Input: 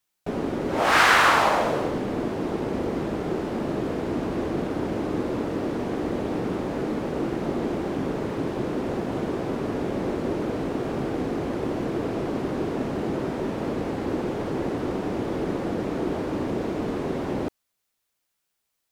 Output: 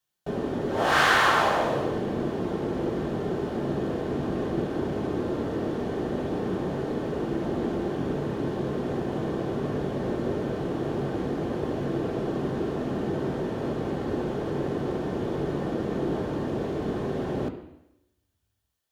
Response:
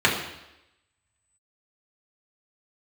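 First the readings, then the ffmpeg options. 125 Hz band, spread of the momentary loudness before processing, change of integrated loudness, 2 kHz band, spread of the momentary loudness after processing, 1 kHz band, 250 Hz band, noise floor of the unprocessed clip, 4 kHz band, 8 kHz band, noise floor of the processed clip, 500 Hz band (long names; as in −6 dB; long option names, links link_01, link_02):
+1.0 dB, 5 LU, −2.0 dB, −3.0 dB, 5 LU, −3.0 dB, −2.0 dB, −78 dBFS, −2.5 dB, can't be measured, −75 dBFS, −1.0 dB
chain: -filter_complex "[0:a]asplit=2[link_01][link_02];[1:a]atrim=start_sample=2205,lowshelf=frequency=110:gain=10[link_03];[link_02][link_03]afir=irnorm=-1:irlink=0,volume=-20dB[link_04];[link_01][link_04]amix=inputs=2:normalize=0,volume=-5.5dB"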